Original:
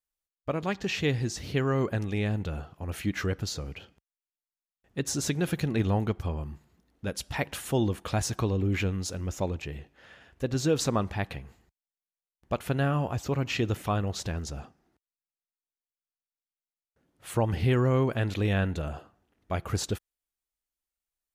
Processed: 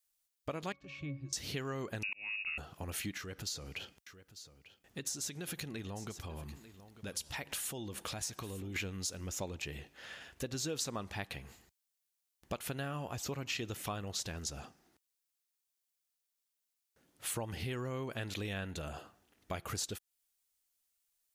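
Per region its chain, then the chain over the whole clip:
0.72–1.33 octave resonator C#, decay 0.2 s + mismatched tape noise reduction encoder only
2.03–2.58 inverted band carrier 2700 Hz + auto swell 0.712 s
3.17–8.76 compressor 2.5:1, threshold -41 dBFS + echo 0.894 s -17.5 dB
whole clip: high shelf 2600 Hz +11.5 dB; compressor 4:1, threshold -37 dBFS; low shelf 120 Hz -5.5 dB

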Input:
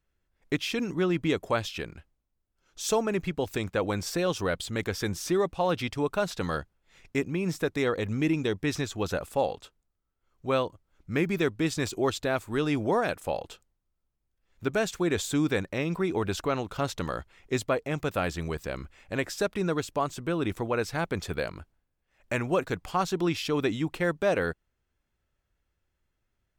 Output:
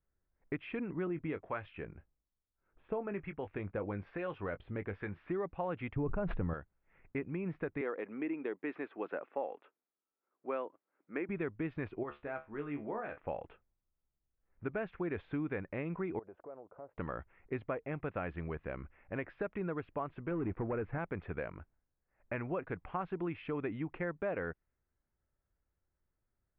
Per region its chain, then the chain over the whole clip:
1.07–5.29 harmonic tremolo 1.1 Hz, depth 50%, crossover 820 Hz + doubler 20 ms -11 dB
5.96–6.54 tilt -4 dB/oct + sustainer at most 21 dB/s
7.81–11.29 HPF 270 Hz 24 dB/oct + high shelf 4800 Hz -6 dB
12.03–13.17 bell 120 Hz -6 dB 1.1 oct + resonator 72 Hz, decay 0.21 s, mix 90%
16.19–16.98 band-pass 570 Hz, Q 2.2 + air absorption 450 m + compressor 2:1, threshold -45 dBFS
20.31–20.98 sample leveller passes 2 + tape spacing loss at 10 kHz 38 dB + mismatched tape noise reduction encoder only
whole clip: steep low-pass 2400 Hz 36 dB/oct; low-pass opened by the level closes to 1600 Hz; compressor 2.5:1, threshold -29 dBFS; gain -6 dB

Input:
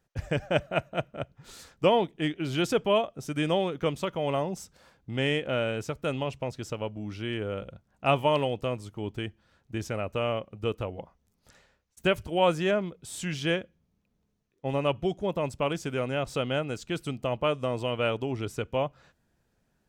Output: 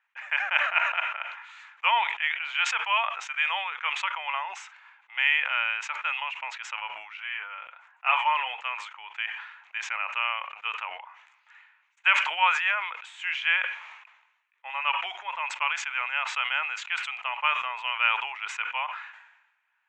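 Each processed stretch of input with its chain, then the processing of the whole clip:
7.17–8.65 bell 3700 Hz -4 dB 1.6 oct + notch comb 160 Hz
whole clip: Chebyshev band-pass 900–7100 Hz, order 4; resonant high shelf 3500 Hz -13 dB, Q 3; sustainer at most 60 dB/s; gain +4.5 dB

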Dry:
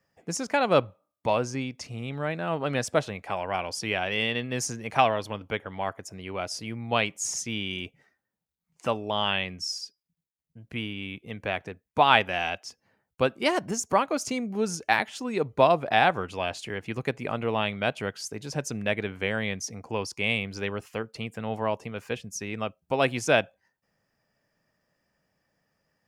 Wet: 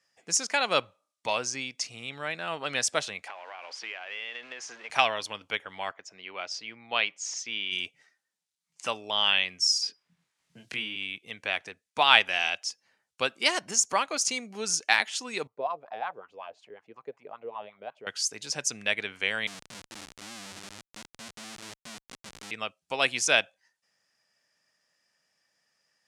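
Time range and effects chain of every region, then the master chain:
3.28–4.9 zero-crossing step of -38.5 dBFS + BPF 470–2100 Hz + compressor 12:1, threshold -34 dBFS
5.91–7.72 HPF 320 Hz 6 dB/oct + air absorption 180 m
9.82–10.96 high shelf 4200 Hz -7 dB + doubler 23 ms -3 dB + three-band squash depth 70%
15.47–18.07 tone controls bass +12 dB, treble +1 dB + wah 5.4 Hz 430–1100 Hz, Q 5.2
19.47–22.51 minimum comb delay 0.98 ms + synth low-pass 280 Hz, resonance Q 1.6 + Schmitt trigger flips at -47.5 dBFS
whole clip: weighting filter ITU-R 468; de-esser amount 25%; low shelf 290 Hz +7.5 dB; gain -3.5 dB

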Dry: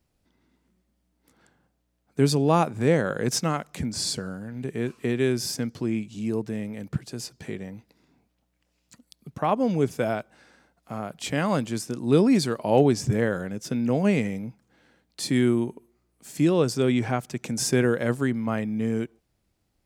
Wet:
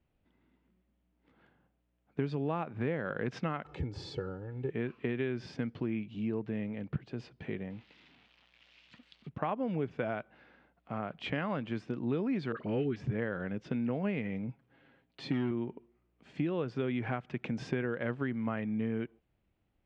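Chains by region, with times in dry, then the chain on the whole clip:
3.65–4.7 bell 2200 Hz -8 dB 1.9 oct + comb 2.3 ms, depth 85% + upward compressor, threshold -37 dBFS
7.7–9.29 switching spikes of -38.5 dBFS + LPF 4500 Hz + high shelf 2700 Hz +9 dB
12.52–12.96 band shelf 750 Hz -13 dB 1.1 oct + dispersion highs, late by 54 ms, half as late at 1400 Hz
14.48–15.51 comb 7.4 ms, depth 55% + hard clip -14 dBFS
whole clip: Chebyshev low-pass 3000 Hz, order 3; dynamic EQ 1600 Hz, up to +4 dB, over -43 dBFS, Q 1.2; compressor 6:1, threshold -26 dBFS; gain -3.5 dB

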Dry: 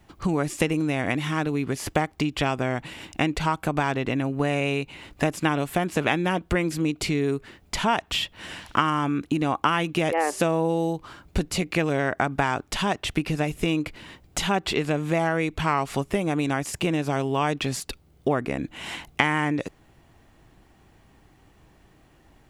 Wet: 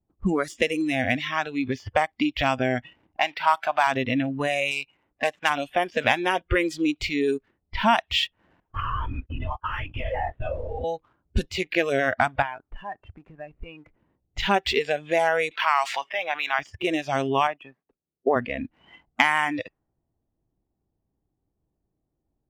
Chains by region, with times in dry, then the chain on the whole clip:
3.19–3.87 G.711 law mismatch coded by mu + HPF 590 Hz 6 dB/oct + bell 770 Hz +4 dB 1.5 oct
4.71–5.5 median filter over 9 samples + tilt +2 dB/oct + mismatched tape noise reduction encoder only
8.6–10.84 gate -39 dBFS, range -7 dB + compressor 8:1, threshold -24 dBFS + LPC vocoder at 8 kHz whisper
12.42–13.99 LPF 2900 Hz 24 dB/oct + compressor 2.5:1, threshold -31 dBFS
15.51–16.59 HPF 790 Hz + fast leveller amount 50%
17.47–18.36 three-band isolator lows -17 dB, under 160 Hz, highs -22 dB, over 2700 Hz + notch 1400 Hz, Q 16 + upward expander, over -35 dBFS
whole clip: low-pass opened by the level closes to 550 Hz, open at -19 dBFS; sample leveller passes 1; spectral noise reduction 19 dB

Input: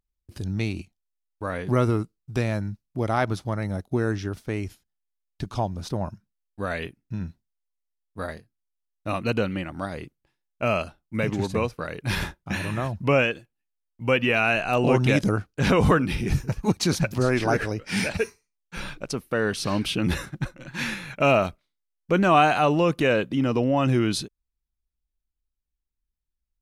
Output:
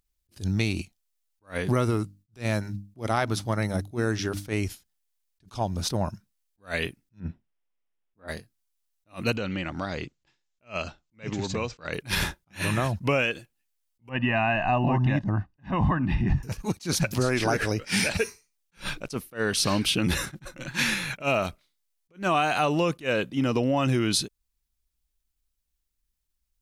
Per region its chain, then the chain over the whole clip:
1.91–4.54 notches 50/100/150/200/250/300 Hz + gate with hold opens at -52 dBFS, closes at -55 dBFS
7.2–8.28 polynomial smoothing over 25 samples + bell 320 Hz +6 dB 2.6 oct
9.36–11.93 elliptic low-pass 7400 Hz + compressor 3:1, threshold -31 dBFS
14.09–16.43 LPF 1500 Hz + comb 1.1 ms, depth 90%
whole clip: high shelf 2700 Hz +8 dB; compressor, threshold -24 dBFS; attack slew limiter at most 280 dB/s; gain +3.5 dB

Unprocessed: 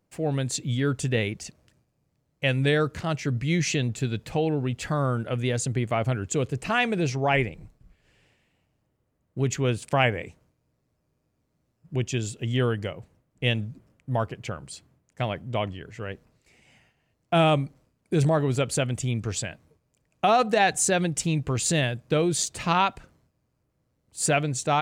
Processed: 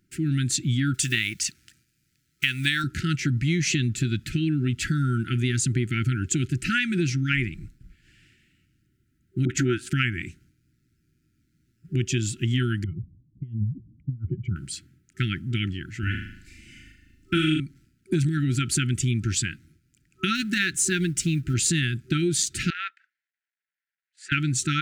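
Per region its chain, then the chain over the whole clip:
0.94–2.84 block floating point 7-bit + tilt shelf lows -7.5 dB, about 940 Hz
9.45–9.9 band shelf 710 Hz +10 dB 2.9 oct + dispersion highs, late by 46 ms, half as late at 460 Hz + mismatched tape noise reduction decoder only
12.84–14.56 spectral contrast raised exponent 1.9 + negative-ratio compressor -31 dBFS, ratio -0.5 + running mean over 50 samples
16.03–17.6 low shelf 170 Hz +9.5 dB + comb 3.4 ms, depth 61% + flutter echo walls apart 6.6 m, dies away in 0.63 s
20.35–21.54 G.711 law mismatch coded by mu + upward expander, over -30 dBFS
22.7–24.32 G.711 law mismatch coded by A + ladder band-pass 2000 Hz, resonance 55%
whole clip: FFT band-reject 380–1300 Hz; compressor, threshold -26 dBFS; gain +6 dB

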